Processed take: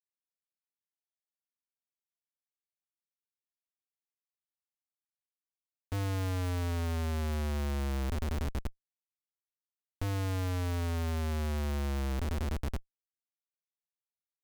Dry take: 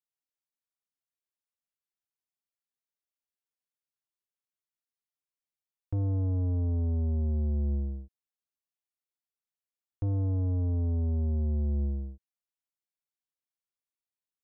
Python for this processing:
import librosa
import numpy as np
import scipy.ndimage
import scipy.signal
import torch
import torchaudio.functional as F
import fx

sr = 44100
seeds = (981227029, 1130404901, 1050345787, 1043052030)

y = fx.bin_compress(x, sr, power=0.4)
y = fx.echo_feedback(y, sr, ms=681, feedback_pct=35, wet_db=-19.5)
y = fx.schmitt(y, sr, flips_db=-43.5)